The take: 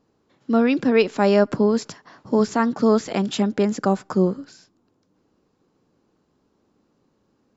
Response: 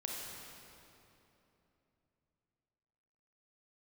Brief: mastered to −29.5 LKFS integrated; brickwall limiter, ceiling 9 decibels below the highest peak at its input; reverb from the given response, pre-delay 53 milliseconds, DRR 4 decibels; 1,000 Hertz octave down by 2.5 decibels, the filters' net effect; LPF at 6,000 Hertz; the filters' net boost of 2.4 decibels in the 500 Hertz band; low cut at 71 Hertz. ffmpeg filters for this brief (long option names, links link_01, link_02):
-filter_complex "[0:a]highpass=71,lowpass=6000,equalizer=frequency=500:width_type=o:gain=4,equalizer=frequency=1000:width_type=o:gain=-5,alimiter=limit=-12.5dB:level=0:latency=1,asplit=2[link_01][link_02];[1:a]atrim=start_sample=2205,adelay=53[link_03];[link_02][link_03]afir=irnorm=-1:irlink=0,volume=-5dB[link_04];[link_01][link_04]amix=inputs=2:normalize=0,volume=-7.5dB"